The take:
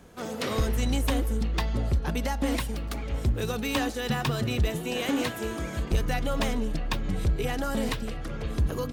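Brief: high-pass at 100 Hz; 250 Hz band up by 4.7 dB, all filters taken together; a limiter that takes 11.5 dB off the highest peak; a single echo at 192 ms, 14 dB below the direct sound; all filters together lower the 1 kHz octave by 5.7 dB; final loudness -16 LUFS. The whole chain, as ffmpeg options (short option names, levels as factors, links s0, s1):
-af "highpass=100,equalizer=f=250:t=o:g=6,equalizer=f=1000:t=o:g=-8.5,alimiter=limit=0.0668:level=0:latency=1,aecho=1:1:192:0.2,volume=6.68"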